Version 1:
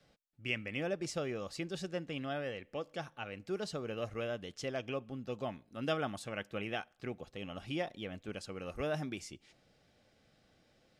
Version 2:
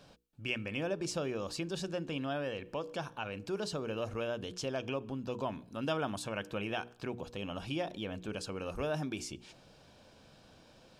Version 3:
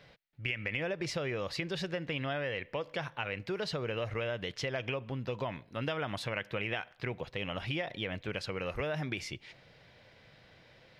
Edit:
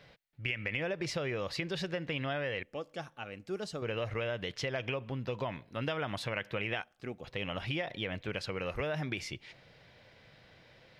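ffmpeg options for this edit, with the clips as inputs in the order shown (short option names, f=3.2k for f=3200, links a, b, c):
-filter_complex "[0:a]asplit=2[a][b];[2:a]asplit=3[c][d][e];[c]atrim=end=2.632[f];[a]atrim=start=2.628:end=3.822[g];[d]atrim=start=3.818:end=6.822[h];[b]atrim=start=6.818:end=7.242[i];[e]atrim=start=7.238[j];[f][g]acrossfade=d=0.004:c1=hsin:c2=hsin[k];[k][h]acrossfade=d=0.004:c1=hsin:c2=hsin[l];[l][i]acrossfade=d=0.004:c1=hsin:c2=hsin[m];[m][j]acrossfade=d=0.004:c1=hsin:c2=hsin"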